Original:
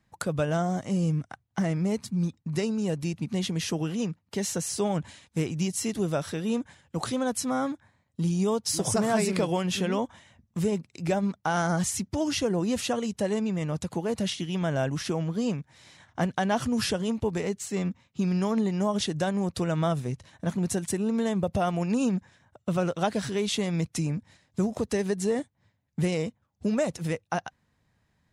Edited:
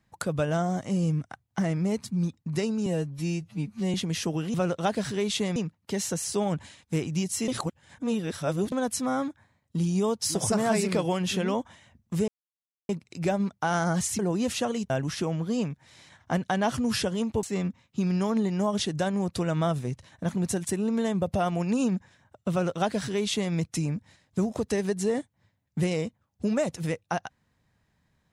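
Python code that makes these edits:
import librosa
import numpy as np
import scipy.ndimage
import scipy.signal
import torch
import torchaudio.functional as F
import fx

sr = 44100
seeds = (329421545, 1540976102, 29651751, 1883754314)

y = fx.edit(x, sr, fx.stretch_span(start_s=2.86, length_s=0.54, factor=2.0),
    fx.reverse_span(start_s=5.92, length_s=1.24),
    fx.insert_silence(at_s=10.72, length_s=0.61),
    fx.cut(start_s=12.02, length_s=0.45),
    fx.cut(start_s=13.18, length_s=1.6),
    fx.cut(start_s=17.31, length_s=0.33),
    fx.duplicate(start_s=22.72, length_s=1.02, to_s=4.0), tone=tone)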